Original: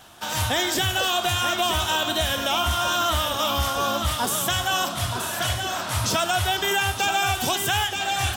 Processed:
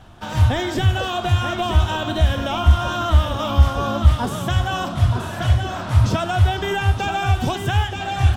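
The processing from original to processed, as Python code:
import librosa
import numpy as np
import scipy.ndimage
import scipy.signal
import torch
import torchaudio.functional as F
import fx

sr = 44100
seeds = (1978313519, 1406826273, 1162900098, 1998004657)

y = fx.riaa(x, sr, side='playback')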